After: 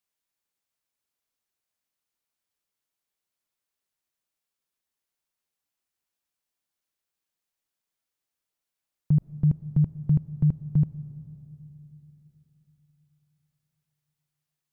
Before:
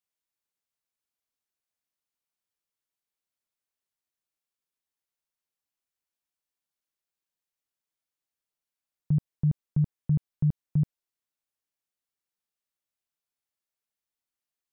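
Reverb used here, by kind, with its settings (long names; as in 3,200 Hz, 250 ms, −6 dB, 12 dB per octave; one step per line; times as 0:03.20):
comb and all-pass reverb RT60 3.5 s, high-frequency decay 0.3×, pre-delay 75 ms, DRR 17.5 dB
level +3.5 dB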